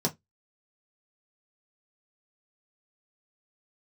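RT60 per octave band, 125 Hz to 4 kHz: 0.20, 0.25, 0.15, 0.15, 0.15, 0.15 s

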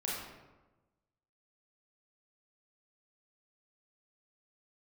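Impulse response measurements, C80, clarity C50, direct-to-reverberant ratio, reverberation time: 2.5 dB, -1.0 dB, -6.0 dB, 1.1 s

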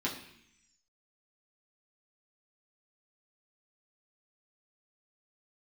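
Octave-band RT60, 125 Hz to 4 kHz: 0.95, 0.95, 0.70, 0.70, 1.0, 1.2 s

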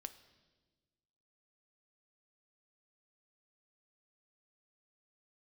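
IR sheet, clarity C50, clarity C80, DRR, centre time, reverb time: 14.0 dB, 16.0 dB, 10.0 dB, 7 ms, 1.3 s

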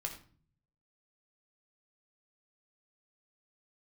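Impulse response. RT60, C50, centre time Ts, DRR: 0.45 s, 9.0 dB, 16 ms, 2.0 dB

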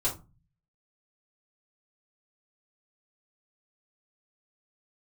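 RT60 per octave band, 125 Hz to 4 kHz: 0.75, 0.55, 0.30, 0.30, 0.20, 0.20 s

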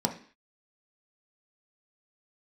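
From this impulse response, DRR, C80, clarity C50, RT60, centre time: 2.5 dB, 16.0 dB, 11.0 dB, 0.45 s, 12 ms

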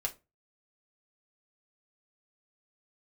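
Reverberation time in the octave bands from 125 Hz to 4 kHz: 0.40, 0.30, 0.30, 0.25, 0.20, 0.20 s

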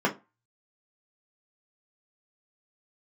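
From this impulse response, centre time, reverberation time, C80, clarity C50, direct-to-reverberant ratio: 12 ms, 0.25 s, 24.0 dB, 16.0 dB, -1.0 dB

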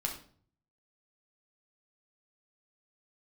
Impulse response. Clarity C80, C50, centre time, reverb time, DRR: 12.0 dB, 8.0 dB, 20 ms, 0.50 s, 0.0 dB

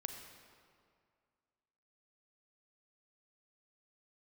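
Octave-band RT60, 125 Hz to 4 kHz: 2.2, 2.2, 2.1, 2.2, 1.8, 1.5 s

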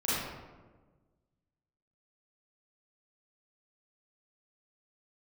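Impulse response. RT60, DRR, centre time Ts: 1.3 s, -11.0 dB, 0.105 s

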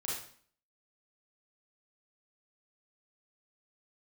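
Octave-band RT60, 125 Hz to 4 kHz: 0.55, 0.60, 0.50, 0.50, 0.50, 0.50 s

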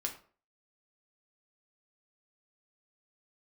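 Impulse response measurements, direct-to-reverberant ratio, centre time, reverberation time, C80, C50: 1.5 dB, 14 ms, 0.45 s, 15.0 dB, 10.5 dB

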